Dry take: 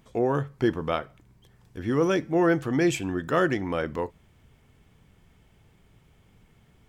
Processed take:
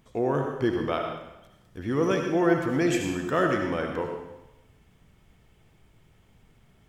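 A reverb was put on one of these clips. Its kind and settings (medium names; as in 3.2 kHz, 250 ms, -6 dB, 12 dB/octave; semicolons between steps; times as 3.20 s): algorithmic reverb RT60 0.94 s, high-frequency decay 1×, pre-delay 35 ms, DRR 2.5 dB; trim -2 dB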